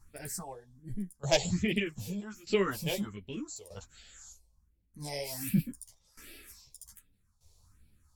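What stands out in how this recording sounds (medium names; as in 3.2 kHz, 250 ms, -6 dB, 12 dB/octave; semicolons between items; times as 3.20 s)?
phasing stages 4, 1.3 Hz, lowest notch 230–1100 Hz; tremolo saw down 0.81 Hz, depth 85%; a shimmering, thickened sound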